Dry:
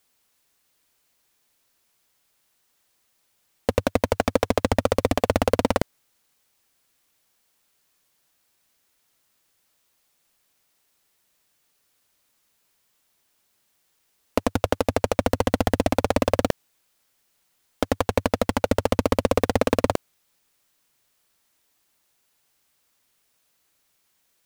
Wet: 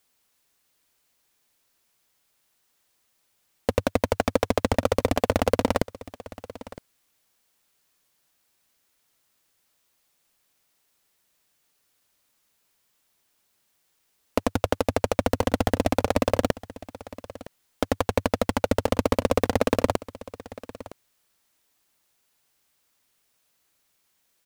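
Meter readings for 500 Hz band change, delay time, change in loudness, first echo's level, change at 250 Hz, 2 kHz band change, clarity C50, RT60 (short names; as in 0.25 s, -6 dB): -1.5 dB, 0.963 s, -1.5 dB, -18.0 dB, -1.5 dB, -1.5 dB, none, none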